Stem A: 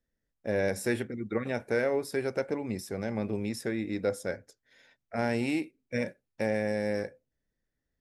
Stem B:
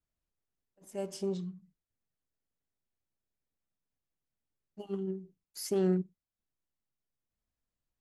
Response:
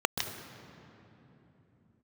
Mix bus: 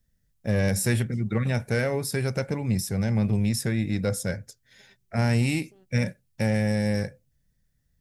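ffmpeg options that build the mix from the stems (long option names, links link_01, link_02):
-filter_complex "[0:a]highshelf=frequency=3600:gain=11,volume=2.5dB,asplit=2[link_01][link_02];[1:a]highpass=430,acompressor=threshold=-41dB:ratio=6,volume=-13.5dB[link_03];[link_02]apad=whole_len=352909[link_04];[link_03][link_04]sidechaingate=range=-33dB:threshold=-54dB:ratio=16:detection=peak[link_05];[link_01][link_05]amix=inputs=2:normalize=0,lowshelf=frequency=220:width_type=q:width=1.5:gain=11.5,asoftclip=type=tanh:threshold=-13dB"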